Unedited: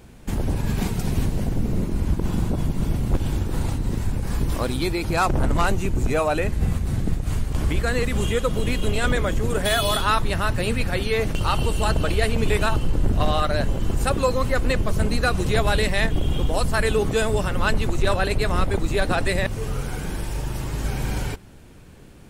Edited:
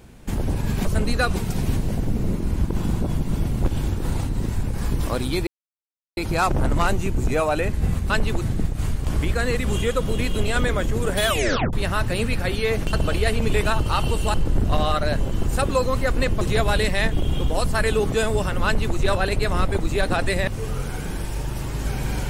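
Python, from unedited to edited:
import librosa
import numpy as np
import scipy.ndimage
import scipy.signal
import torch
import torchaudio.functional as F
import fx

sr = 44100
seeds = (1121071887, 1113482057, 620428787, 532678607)

y = fx.edit(x, sr, fx.insert_silence(at_s=4.96, length_s=0.7),
    fx.tape_stop(start_s=9.74, length_s=0.47),
    fx.move(start_s=11.41, length_s=0.48, to_s=12.82),
    fx.move(start_s=14.89, length_s=0.51, to_s=0.85),
    fx.duplicate(start_s=17.64, length_s=0.31, to_s=6.89), tone=tone)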